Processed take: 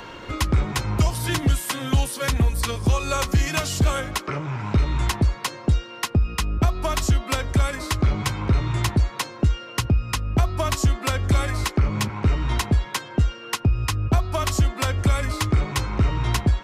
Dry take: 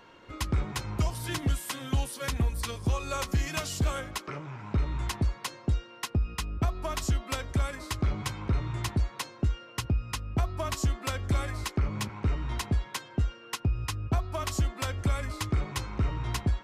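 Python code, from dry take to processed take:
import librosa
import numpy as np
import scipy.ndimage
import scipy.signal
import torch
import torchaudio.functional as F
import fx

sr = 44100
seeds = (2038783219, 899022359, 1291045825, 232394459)

y = fx.band_squash(x, sr, depth_pct=40)
y = y * librosa.db_to_amplitude(8.0)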